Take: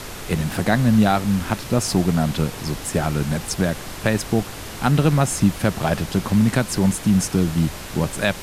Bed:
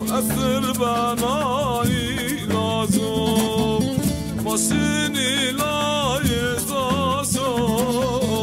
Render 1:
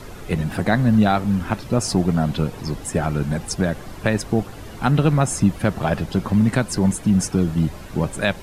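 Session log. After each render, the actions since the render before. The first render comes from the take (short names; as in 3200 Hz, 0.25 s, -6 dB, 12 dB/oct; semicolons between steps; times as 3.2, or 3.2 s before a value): denoiser 11 dB, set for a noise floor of -34 dBFS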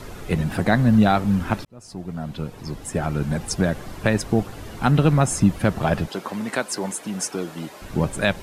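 1.65–3.54 fade in; 6.08–7.82 HPF 410 Hz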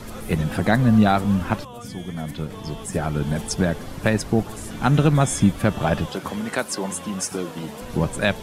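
add bed -17.5 dB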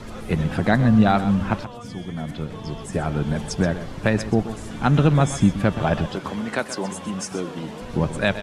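air absorption 60 m; echo 0.127 s -13 dB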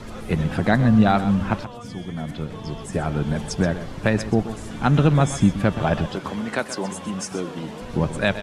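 nothing audible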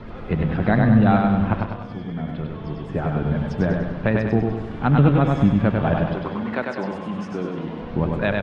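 air absorption 340 m; feedback echo 98 ms, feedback 50%, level -3.5 dB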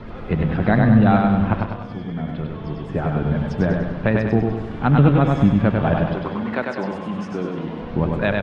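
gain +1.5 dB; limiter -3 dBFS, peak gain reduction 0.5 dB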